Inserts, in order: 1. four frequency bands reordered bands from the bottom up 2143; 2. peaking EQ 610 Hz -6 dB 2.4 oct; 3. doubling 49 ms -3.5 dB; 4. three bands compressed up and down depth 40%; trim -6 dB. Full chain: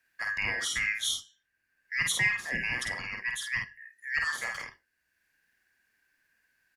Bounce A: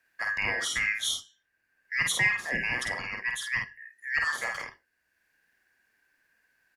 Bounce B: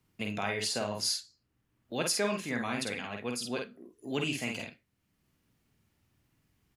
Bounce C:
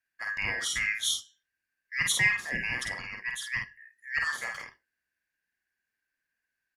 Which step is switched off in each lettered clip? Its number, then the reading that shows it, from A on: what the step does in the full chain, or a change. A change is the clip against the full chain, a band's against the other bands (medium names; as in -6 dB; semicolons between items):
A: 2, 500 Hz band +4.0 dB; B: 1, 2 kHz band -14.0 dB; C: 4, crest factor change +1.5 dB